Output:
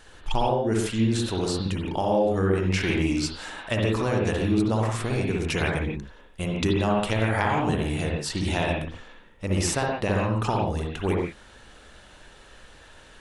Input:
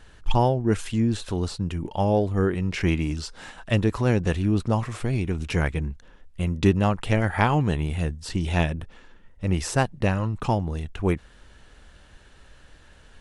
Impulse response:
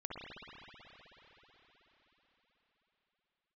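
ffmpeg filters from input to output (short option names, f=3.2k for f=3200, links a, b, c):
-filter_complex "[0:a]bass=f=250:g=-8,treble=f=4k:g=4,acompressor=threshold=-25dB:ratio=6[a];[1:a]atrim=start_sample=2205,afade=t=out:st=0.23:d=0.01,atrim=end_sample=10584[b];[a][b]afir=irnorm=-1:irlink=0,volume=7.5dB"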